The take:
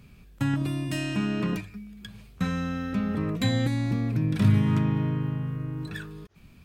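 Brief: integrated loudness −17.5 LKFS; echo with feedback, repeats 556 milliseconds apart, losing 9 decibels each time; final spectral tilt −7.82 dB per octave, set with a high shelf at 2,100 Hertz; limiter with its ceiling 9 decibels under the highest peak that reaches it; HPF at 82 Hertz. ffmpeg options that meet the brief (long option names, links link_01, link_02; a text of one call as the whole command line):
ffmpeg -i in.wav -af "highpass=82,highshelf=frequency=2100:gain=-8.5,alimiter=limit=-20dB:level=0:latency=1,aecho=1:1:556|1112|1668|2224:0.355|0.124|0.0435|0.0152,volume=12.5dB" out.wav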